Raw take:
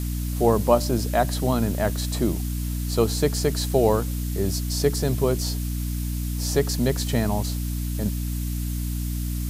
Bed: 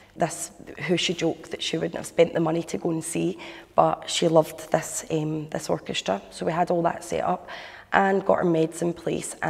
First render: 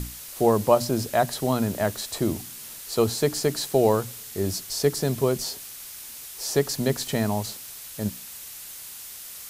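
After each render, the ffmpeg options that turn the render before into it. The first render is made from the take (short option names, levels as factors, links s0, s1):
-af "bandreject=f=60:t=h:w=6,bandreject=f=120:t=h:w=6,bandreject=f=180:t=h:w=6,bandreject=f=240:t=h:w=6,bandreject=f=300:t=h:w=6"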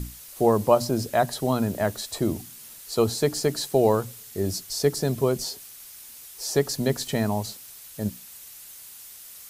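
-af "afftdn=nr=6:nf=-41"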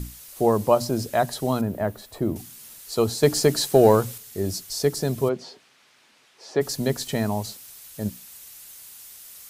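-filter_complex "[0:a]asettb=1/sr,asplit=3[s0][s1][s2];[s0]atrim=end=1.614[s3];[s1]atrim=start=1.61:end=2.36,asetpts=PTS-STARTPTS,afade=t=in:d=0.004:c=qsin,afade=t=out:st=0.746:d=0.004:c=qsin,equalizer=f=6600:w=0.41:g=-14[s4];[s2]atrim=start=2.356[s5];[s3][s4]acrossfade=d=0.004:c1=hsin:c2=qsin[s6];[s6][s5]acrossfade=d=0.004:c1=qsin:c2=hsin,asettb=1/sr,asplit=3[s7][s8][s9];[s7]atrim=end=3.234[s10];[s8]atrim=start=3.23:end=4.18,asetpts=PTS-STARTPTS,afade=t=in:d=0.004:c=qsin,afade=t=out:st=0.946:d=0.004:c=qsin,acontrast=32[s11];[s9]atrim=start=4.176[s12];[s10][s11]acrossfade=d=0.004:c1=hsin:c2=qsin[s13];[s13][s12]acrossfade=d=0.004:c1=qsin:c2=hsin,asplit=3[s14][s15][s16];[s14]afade=t=out:st=5.28:d=0.02[s17];[s15]highpass=190,lowpass=2800,afade=t=in:st=5.28:d=0.02,afade=t=out:st=6.6:d=0.02[s18];[s16]afade=t=in:st=6.6:d=0.02[s19];[s17][s18][s19]amix=inputs=3:normalize=0"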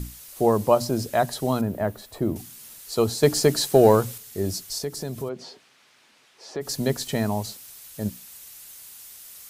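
-filter_complex "[0:a]asettb=1/sr,asplit=3[s0][s1][s2];[s0]atrim=end=4.784[s3];[s1]atrim=start=4.78:end=6.68,asetpts=PTS-STARTPTS,afade=t=in:d=0.004:c=qsin,afade=t=out:st=1.896:d=0.004:c=qsin,acompressor=threshold=0.0251:ratio=2:attack=3.2:release=140:knee=1:detection=peak[s4];[s2]atrim=start=6.676[s5];[s3][s4]acrossfade=d=0.004:c1=hsin:c2=qsin[s6];[s6][s5]acrossfade=d=0.004:c1=qsin:c2=hsin"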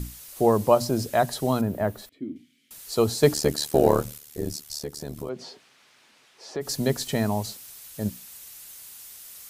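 -filter_complex "[0:a]asettb=1/sr,asplit=3[s0][s1][s2];[s0]atrim=end=2.094[s3];[s1]atrim=start=2.09:end=2.71,asetpts=PTS-STARTPTS,afade=t=in:d=0.004:c=qsin,afade=t=out:st=0.616:d=0.004:c=qsin,asplit=3[s4][s5][s6];[s4]bandpass=f=270:t=q:w=8,volume=1[s7];[s5]bandpass=f=2290:t=q:w=8,volume=0.501[s8];[s6]bandpass=f=3010:t=q:w=8,volume=0.355[s9];[s7][s8][s9]amix=inputs=3:normalize=0[s10];[s2]atrim=start=2.706[s11];[s3][s10]acrossfade=d=0.004:c1=hsin:c2=qsin[s12];[s12][s11]acrossfade=d=0.004:c1=qsin:c2=hsin,asplit=3[s13][s14][s15];[s13]afade=t=out:st=3.33:d=0.02[s16];[s14]tremolo=f=74:d=0.947,afade=t=in:st=3.33:d=0.02,afade=t=out:st=5.28:d=0.02[s17];[s15]afade=t=in:st=5.28:d=0.02[s18];[s16][s17][s18]amix=inputs=3:normalize=0"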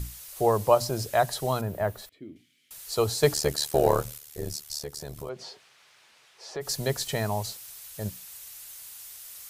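-af "equalizer=f=250:t=o:w=0.91:g=-12.5"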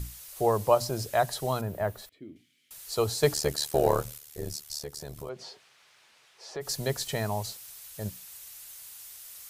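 -af "volume=0.794"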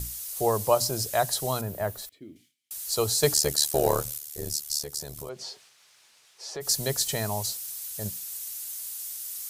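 -af "agate=range=0.0224:threshold=0.00141:ratio=3:detection=peak,bass=f=250:g=0,treble=f=4000:g=10"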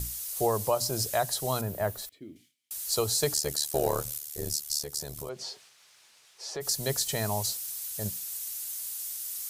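-af "alimiter=limit=0.168:level=0:latency=1:release=288"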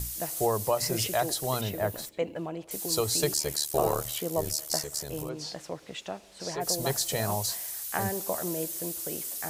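-filter_complex "[1:a]volume=0.251[s0];[0:a][s0]amix=inputs=2:normalize=0"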